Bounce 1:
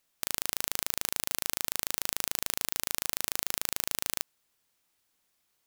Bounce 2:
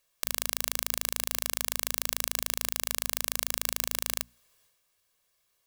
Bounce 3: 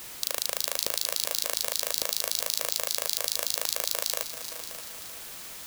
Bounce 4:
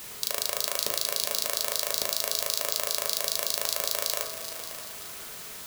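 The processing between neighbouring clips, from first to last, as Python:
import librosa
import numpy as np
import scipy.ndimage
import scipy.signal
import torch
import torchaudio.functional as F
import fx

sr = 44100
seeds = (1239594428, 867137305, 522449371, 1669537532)

y1 = fx.hum_notches(x, sr, base_hz=60, count=4)
y1 = y1 + 0.59 * np.pad(y1, (int(1.8 * sr / 1000.0), 0))[:len(y1)]
y1 = fx.transient(y1, sr, attack_db=0, sustain_db=7)
y2 = fx.filter_lfo_highpass(y1, sr, shape='square', hz=5.2, low_hz=540.0, high_hz=4200.0, q=3.2)
y2 = fx.echo_heads(y2, sr, ms=192, heads='second and third', feedback_pct=45, wet_db=-13)
y2 = fx.dmg_noise_colour(y2, sr, seeds[0], colour='white', level_db=-42.0)
y3 = fx.rev_fdn(y2, sr, rt60_s=1.1, lf_ratio=1.0, hf_ratio=0.25, size_ms=14.0, drr_db=2.5)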